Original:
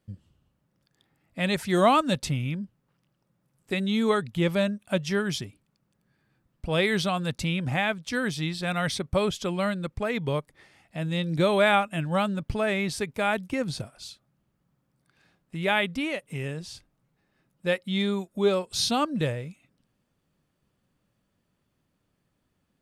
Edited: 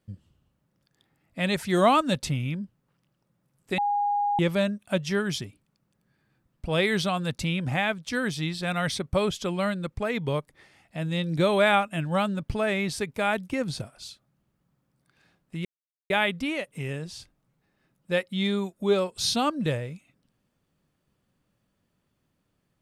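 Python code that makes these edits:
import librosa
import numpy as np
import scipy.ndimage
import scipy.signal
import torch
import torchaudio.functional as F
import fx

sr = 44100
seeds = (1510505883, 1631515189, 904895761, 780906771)

y = fx.edit(x, sr, fx.bleep(start_s=3.78, length_s=0.61, hz=819.0, db=-22.0),
    fx.insert_silence(at_s=15.65, length_s=0.45), tone=tone)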